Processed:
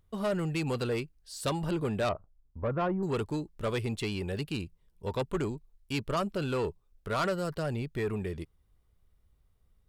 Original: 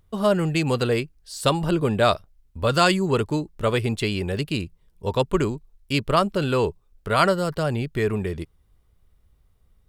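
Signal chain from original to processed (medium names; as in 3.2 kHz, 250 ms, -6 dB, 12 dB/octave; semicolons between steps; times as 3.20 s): 2.09–3.03 s: low-pass 1.2 kHz 24 dB/octave; saturation -16.5 dBFS, distortion -13 dB; trim -7 dB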